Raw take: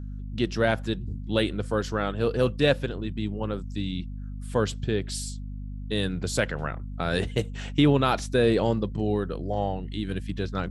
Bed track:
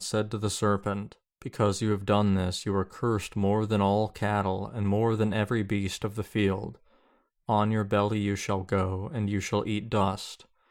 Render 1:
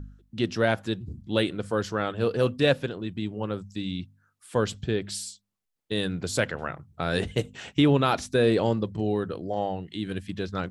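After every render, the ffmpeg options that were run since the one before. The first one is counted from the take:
-af "bandreject=f=50:t=h:w=4,bandreject=f=100:t=h:w=4,bandreject=f=150:t=h:w=4,bandreject=f=200:t=h:w=4,bandreject=f=250:t=h:w=4"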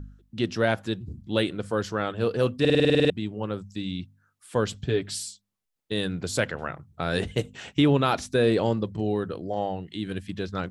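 -filter_complex "[0:a]asettb=1/sr,asplit=3[s0][s1][s2];[s0]atrim=end=4.864[s3];[s1]atrim=start=4.86:end=5.28,asetpts=PTS-STARTPTS,afade=t=in:d=0.004:c=qsin,afade=t=out:st=0.416:d=0.004:c=qsin,aecho=1:1:7.1:0.61,atrim=end_sample=18522[s4];[s2]atrim=start=5.276[s5];[s3][s4]acrossfade=d=0.004:c1=hsin:c2=qsin[s6];[s6][s5]acrossfade=d=0.004:c1=qsin:c2=hsin,asplit=11[s7][s8][s9][s10][s11][s12][s13][s14][s15][s16][s17];[s7]atrim=end=2.652[s18];[s8]atrim=start=2.598:end=2.652[s19];[s9]atrim=start=2.598:end=2.652[s20];[s10]atrim=start=2.598:end=2.652[s21];[s11]atrim=start=2.598:end=2.652[s22];[s12]atrim=start=2.598:end=2.652[s23];[s13]atrim=start=2.598:end=2.652[s24];[s14]atrim=start=2.598:end=2.652[s25];[s15]atrim=start=2.598:end=2.652[s26];[s16]atrim=start=2.598:end=2.652[s27];[s17]atrim=start=3.098[s28];[s18][s19]acrossfade=d=0.004:c1=hsin:c2=hsin[s29];[s29][s20]acrossfade=d=0.004:c1=hsin:c2=hsin[s30];[s30][s21]acrossfade=d=0.004:c1=hsin:c2=hsin[s31];[s31][s22]acrossfade=d=0.004:c1=hsin:c2=hsin[s32];[s32][s23]acrossfade=d=0.004:c1=hsin:c2=hsin[s33];[s33][s24]acrossfade=d=0.004:c1=hsin:c2=hsin[s34];[s34][s25]acrossfade=d=0.004:c1=hsin:c2=hsin[s35];[s35][s26]acrossfade=d=0.004:c1=hsin:c2=hsin[s36];[s36][s27]acrossfade=d=0.004:c1=hsin:c2=hsin[s37];[s37][s28]acrossfade=d=0.004:c1=hsin:c2=hsin"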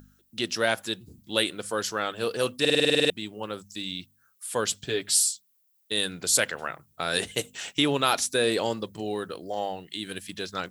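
-af "aemphasis=mode=production:type=riaa"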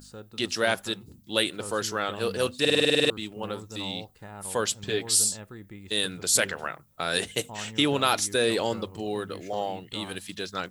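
-filter_complex "[1:a]volume=0.158[s0];[0:a][s0]amix=inputs=2:normalize=0"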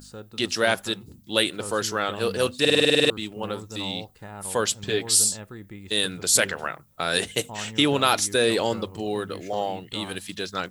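-af "volume=1.41"

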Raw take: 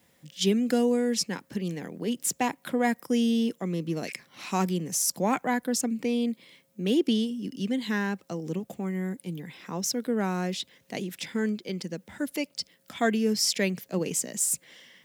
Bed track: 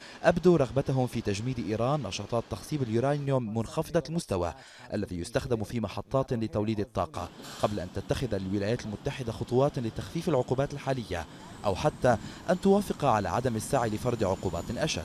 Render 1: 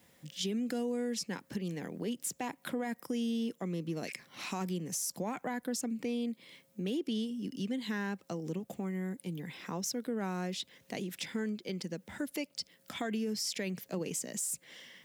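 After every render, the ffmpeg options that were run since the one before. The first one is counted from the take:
-af "alimiter=limit=0.106:level=0:latency=1:release=21,acompressor=threshold=0.0126:ratio=2"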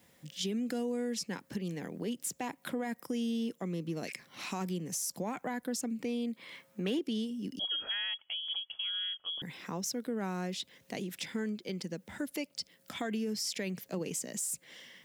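-filter_complex "[0:a]asettb=1/sr,asplit=3[s0][s1][s2];[s0]atrim=end=6.364[s3];[s1]atrim=start=6.36:end=6.99,asetpts=PTS-STARTPTS,afade=t=in:d=0.004:c=qsin,afade=t=out:st=0.626:d=0.004:c=qsin,equalizer=f=1300:w=0.66:g=12[s4];[s2]atrim=start=6.986[s5];[s3][s4]acrossfade=d=0.004:c1=hsin:c2=qsin[s6];[s6][s5]acrossfade=d=0.004:c1=qsin:c2=hsin,asettb=1/sr,asplit=3[s7][s8][s9];[s7]atrim=end=7.594[s10];[s8]atrim=start=7.59:end=9.42,asetpts=PTS-STARTPTS,afade=t=in:d=0.004:c=qsin,afade=t=out:st=1.826:d=0.004:c=qsin,lowpass=f=3000:t=q:w=0.5098,lowpass=f=3000:t=q:w=0.6013,lowpass=f=3000:t=q:w=0.9,lowpass=f=3000:t=q:w=2.563,afreqshift=-3500[s11];[s9]atrim=start=9.416[s12];[s10][s11]acrossfade=d=0.004:c1=hsin:c2=qsin[s13];[s13][s12]acrossfade=d=0.004:c1=qsin:c2=hsin"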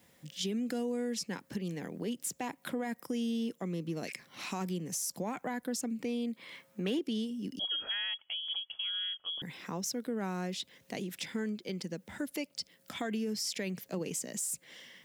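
-af anull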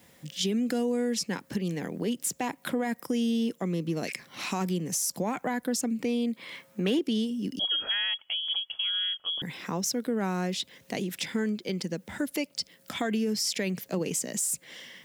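-af "volume=2.11"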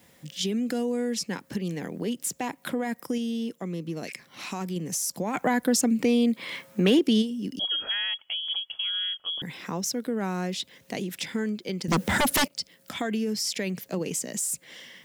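-filter_complex "[0:a]asplit=3[s0][s1][s2];[s0]afade=t=out:st=5.33:d=0.02[s3];[s1]acontrast=63,afade=t=in:st=5.33:d=0.02,afade=t=out:st=7.21:d=0.02[s4];[s2]afade=t=in:st=7.21:d=0.02[s5];[s3][s4][s5]amix=inputs=3:normalize=0,asettb=1/sr,asplit=3[s6][s7][s8];[s6]atrim=end=11.884[s9];[s7]atrim=start=11.88:end=12.48,asetpts=PTS-STARTPTS,afade=t=in:d=0.004:c=qsin,afade=t=out:st=0.596:d=0.004:c=qsin,aeval=exprs='0.119*sin(PI/2*5.01*val(0)/0.119)':c=same[s10];[s8]atrim=start=12.476[s11];[s9][s10]acrossfade=d=0.004:c1=hsin:c2=qsin[s12];[s12][s11]acrossfade=d=0.004:c1=qsin:c2=hsin,asplit=3[s13][s14][s15];[s13]atrim=end=3.182[s16];[s14]atrim=start=3.178:end=4.762,asetpts=PTS-STARTPTS,volume=0.708[s17];[s15]atrim=start=4.758[s18];[s16][s17]acrossfade=d=0.004:c1=hsin:c2=hsin[s19];[s19][s18]acrossfade=d=0.004:c1=hsin:c2=hsin"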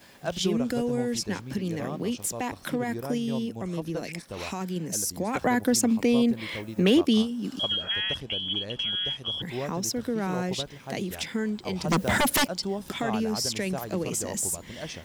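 -filter_complex "[1:a]volume=0.376[s0];[0:a][s0]amix=inputs=2:normalize=0"

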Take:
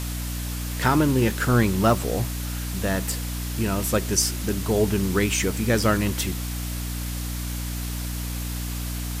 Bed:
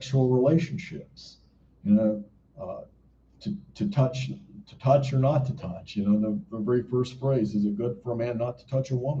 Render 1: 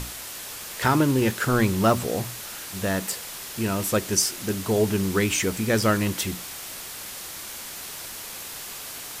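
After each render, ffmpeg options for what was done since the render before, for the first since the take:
-af "bandreject=f=60:t=h:w=6,bandreject=f=120:t=h:w=6,bandreject=f=180:t=h:w=6,bandreject=f=240:t=h:w=6,bandreject=f=300:t=h:w=6"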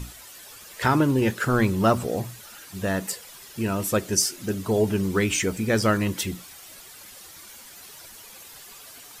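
-af "afftdn=nr=11:nf=-37"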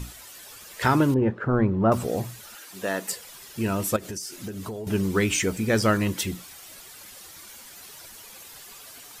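-filter_complex "[0:a]asettb=1/sr,asplit=3[s0][s1][s2];[s0]atrim=end=1.144[s3];[s1]atrim=start=1.14:end=1.92,asetpts=PTS-STARTPTS,afade=t=in:d=0.004:c=qsin,afade=t=out:st=0.776:d=0.004:c=qsin,lowpass=1100[s4];[s2]atrim=start=1.916[s5];[s3][s4]acrossfade=d=0.004:c1=hsin:c2=qsin[s6];[s6][s5]acrossfade=d=0.004:c1=qsin:c2=hsin,asettb=1/sr,asplit=3[s7][s8][s9];[s7]atrim=end=2.554[s10];[s8]atrim=start=2.55:end=3.09,asetpts=PTS-STARTPTS,afade=t=in:d=0.004:c=qsin,afade=t=out:st=0.536:d=0.004:c=qsin,highpass=300[s11];[s9]atrim=start=3.086[s12];[s10][s11]acrossfade=d=0.004:c1=hsin:c2=qsin[s13];[s13][s12]acrossfade=d=0.004:c1=qsin:c2=hsin,asettb=1/sr,asplit=3[s14][s15][s16];[s14]atrim=end=3.964[s17];[s15]atrim=start=3.96:end=4.87,asetpts=PTS-STARTPTS,afade=t=in:d=0.004:c=qsin,afade=t=out:st=0.906:d=0.004:c=qsin,acompressor=threshold=0.0316:ratio=16:attack=3.2:release=140:knee=1:detection=peak[s18];[s16]atrim=start=4.866[s19];[s17][s18]acrossfade=d=0.004:c1=hsin:c2=qsin[s20];[s20][s19]acrossfade=d=0.004:c1=qsin:c2=hsin"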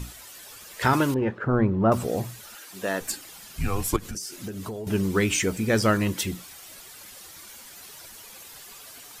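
-filter_complex "[0:a]asettb=1/sr,asplit=3[s0][s1][s2];[s0]atrim=end=0.934[s3];[s1]atrim=start=0.93:end=1.38,asetpts=PTS-STARTPTS,afade=t=in:d=0.004:c=qsin,afade=t=out:st=0.446:d=0.004:c=qsin,tiltshelf=f=630:g=-5[s4];[s2]atrim=start=1.376[s5];[s3][s4]acrossfade=d=0.004:c1=hsin:c2=qsin[s6];[s6][s5]acrossfade=d=0.004:c1=qsin:c2=hsin,asettb=1/sr,asplit=3[s7][s8][s9];[s7]atrim=end=3.004[s10];[s8]atrim=start=3:end=4.15,asetpts=PTS-STARTPTS,afade=t=in:d=0.004:c=qsin,afade=t=out:st=1.146:d=0.004:c=qsin,afreqshift=-190[s11];[s9]atrim=start=4.146[s12];[s10][s11]acrossfade=d=0.004:c1=hsin:c2=qsin[s13];[s13][s12]acrossfade=d=0.004:c1=qsin:c2=hsin"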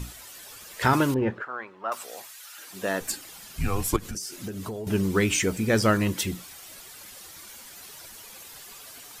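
-filter_complex "[0:a]asettb=1/sr,asplit=3[s0][s1][s2];[s0]atrim=end=1.424[s3];[s1]atrim=start=1.42:end=2.58,asetpts=PTS-STARTPTS,afade=t=in:d=0.004:c=qsin,afade=t=out:st=1.156:d=0.004:c=qsin,highpass=1200[s4];[s2]atrim=start=2.576[s5];[s3][s4]acrossfade=d=0.004:c1=hsin:c2=qsin[s6];[s6][s5]acrossfade=d=0.004:c1=qsin:c2=hsin"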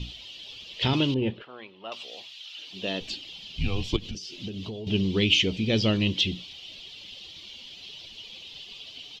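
-filter_complex "[0:a]acrossover=split=9800[s0][s1];[s1]acompressor=threshold=0.00355:ratio=4:attack=1:release=60[s2];[s0][s2]amix=inputs=2:normalize=0,firequalizer=gain_entry='entry(190,0);entry(1500,-17);entry(3000,14);entry(8800,-28)':delay=0.05:min_phase=1"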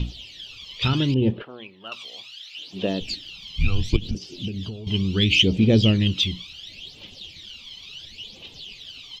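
-af "aphaser=in_gain=1:out_gain=1:delay=1:decay=0.69:speed=0.71:type=triangular"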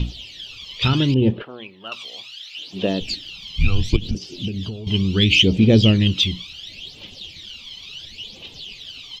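-af "volume=1.5,alimiter=limit=0.794:level=0:latency=1"

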